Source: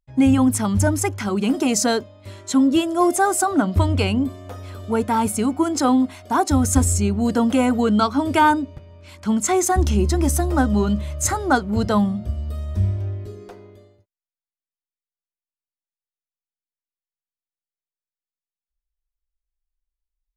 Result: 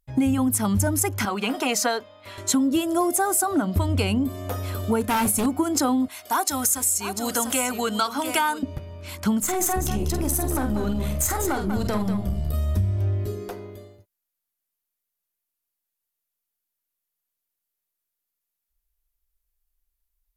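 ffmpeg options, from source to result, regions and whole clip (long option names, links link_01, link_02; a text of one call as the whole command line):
ffmpeg -i in.wav -filter_complex "[0:a]asettb=1/sr,asplit=3[link_01][link_02][link_03];[link_01]atrim=end=1.254[link_04];[link_02]atrim=start=1.25:end=2.38,asetpts=PTS-STARTPTS,afade=type=in:duration=0.004:curve=qsin,afade=type=out:start_time=1.126:duration=0.004:curve=qsin,acrossover=split=560 4200:gain=0.158 1 0.224[link_05][link_06][link_07];[link_05][link_06][link_07]amix=inputs=3:normalize=0,aecho=1:1:4.2:0.3,atrim=end_sample=49833[link_08];[link_03]atrim=start=2.376[link_09];[link_04][link_08]acrossfade=duration=0.004:curve1=hsin:curve2=qsin[link_10];[link_10][link_09]acrossfade=duration=0.004:curve1=qsin:curve2=hsin,asettb=1/sr,asplit=3[link_11][link_12][link_13];[link_11]atrim=end=5.014[link_14];[link_12]atrim=start=5.01:end=5.46,asetpts=PTS-STARTPTS,afade=type=in:duration=0.004:curve=qsin,afade=type=out:start_time=0.446:duration=0.004:curve=qsin,aeval=exprs='0.141*(abs(mod(val(0)/0.141+3,4)-2)-1)':channel_layout=same,asplit=2[link_15][link_16];[link_16]adelay=30,volume=-12dB[link_17];[link_15][link_17]amix=inputs=2:normalize=0,atrim=end_sample=19845[link_18];[link_13]atrim=start=5.456[link_19];[link_14][link_18]acrossfade=duration=0.004:curve1=hsin:curve2=qsin[link_20];[link_20][link_19]acrossfade=duration=0.004:curve1=qsin:curve2=hsin,asettb=1/sr,asplit=3[link_21][link_22][link_23];[link_21]atrim=end=6.084[link_24];[link_22]atrim=start=6.08:end=8.63,asetpts=PTS-STARTPTS,afade=type=in:duration=0.004:curve=qsin,afade=type=out:start_time=2.546:duration=0.004:curve=qsin,highpass=frequency=1500:poles=1,aecho=1:1:695:0.282,atrim=end_sample=112455[link_25];[link_23]atrim=start=8.626[link_26];[link_24][link_25]acrossfade=duration=0.004:curve1=hsin:curve2=qsin[link_27];[link_27][link_26]acrossfade=duration=0.004:curve1=qsin:curve2=hsin,asettb=1/sr,asplit=3[link_28][link_29][link_30];[link_28]atrim=end=9.404[link_31];[link_29]atrim=start=9.4:end=12.54,asetpts=PTS-STARTPTS,afade=type=in:duration=0.004:curve=qsin,afade=type=out:start_time=3.136:duration=0.004:curve=qsin,acompressor=threshold=-23dB:ratio=4:attack=3.2:release=140:knee=1:detection=peak,aeval=exprs='(tanh(10*val(0)+0.55)-tanh(0.55))/10':channel_layout=same,aecho=1:1:47|193:0.447|0.376,atrim=end_sample=138474[link_32];[link_30]atrim=start=12.536[link_33];[link_31][link_32]acrossfade=duration=0.004:curve1=hsin:curve2=qsin[link_34];[link_34][link_33]acrossfade=duration=0.004:curve1=qsin:curve2=hsin,equalizer=frequency=13000:width_type=o:width=0.66:gain=14,acompressor=threshold=-25dB:ratio=6,volume=5.5dB" out.wav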